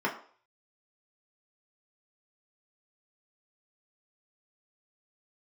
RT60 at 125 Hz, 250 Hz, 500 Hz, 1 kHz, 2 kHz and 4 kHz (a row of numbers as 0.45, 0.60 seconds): 0.25, 0.40, 0.50, 0.50, 0.45, 0.45 seconds